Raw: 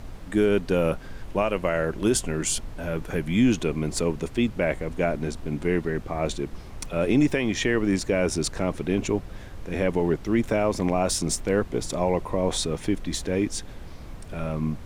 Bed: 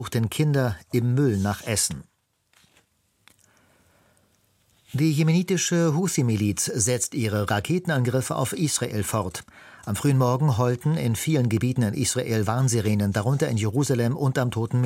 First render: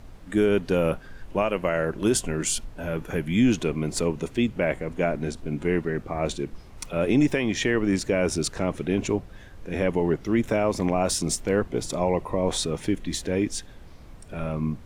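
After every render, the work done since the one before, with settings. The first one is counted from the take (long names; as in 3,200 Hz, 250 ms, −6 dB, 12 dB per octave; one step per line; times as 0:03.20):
noise reduction from a noise print 6 dB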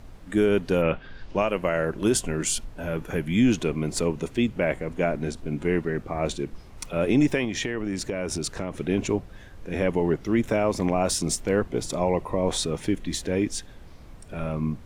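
0:00.81–0:01.45: low-pass with resonance 2,200 Hz → 6,500 Hz, resonance Q 2.1
0:07.44–0:08.76: downward compressor, threshold −24 dBFS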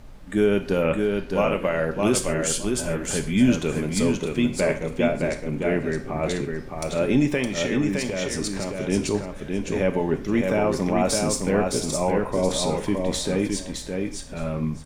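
repeating echo 614 ms, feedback 17%, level −4 dB
reverb whose tail is shaped and stops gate 160 ms falling, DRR 7 dB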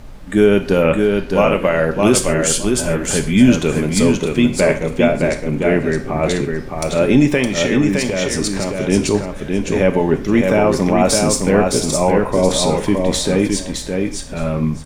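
level +8 dB
brickwall limiter −1 dBFS, peak gain reduction 2 dB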